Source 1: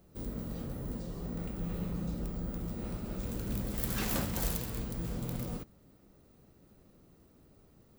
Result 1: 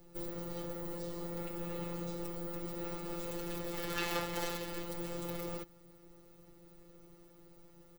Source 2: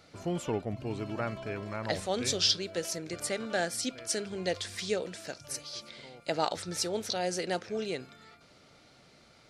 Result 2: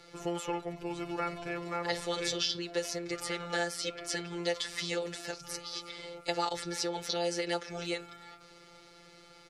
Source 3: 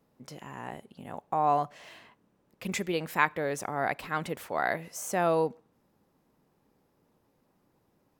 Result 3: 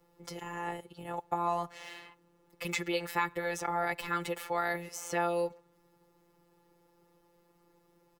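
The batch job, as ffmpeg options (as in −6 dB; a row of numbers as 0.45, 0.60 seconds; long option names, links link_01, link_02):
-filter_complex "[0:a]afftfilt=real='hypot(re,im)*cos(PI*b)':imag='0':win_size=1024:overlap=0.75,aecho=1:1:2.3:0.52,acrossover=split=250|570|4800[link_01][link_02][link_03][link_04];[link_01]acompressor=threshold=-51dB:ratio=4[link_05];[link_02]acompressor=threshold=-47dB:ratio=4[link_06];[link_03]acompressor=threshold=-36dB:ratio=4[link_07];[link_04]acompressor=threshold=-50dB:ratio=4[link_08];[link_05][link_06][link_07][link_08]amix=inputs=4:normalize=0,volume=6dB"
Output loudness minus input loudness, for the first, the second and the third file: −3.0, −2.0, −4.0 LU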